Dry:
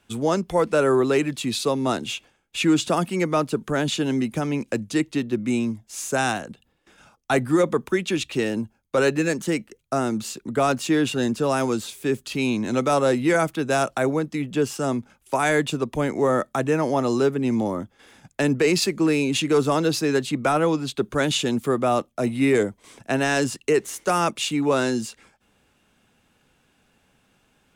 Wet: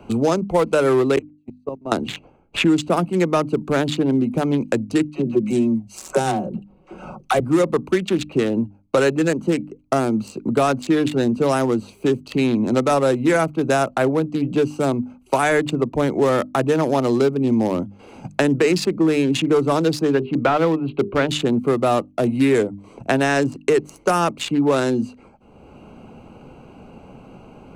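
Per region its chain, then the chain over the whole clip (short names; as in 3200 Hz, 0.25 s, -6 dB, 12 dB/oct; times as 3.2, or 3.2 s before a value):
1.16–1.92 low shelf 140 Hz -3 dB + gate -22 dBFS, range -46 dB + level quantiser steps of 20 dB
5.1–7.4 dynamic EQ 1600 Hz, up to -7 dB, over -37 dBFS, Q 1 + comb 5.4 ms, depth 53% + dispersion lows, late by 49 ms, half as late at 550 Hz
20.12–21.29 steep low-pass 3300 Hz + notches 50/100/150/200/250/300/350/400/450 Hz
whole clip: Wiener smoothing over 25 samples; notches 50/100/150/200/250/300 Hz; three-band squash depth 70%; gain +4 dB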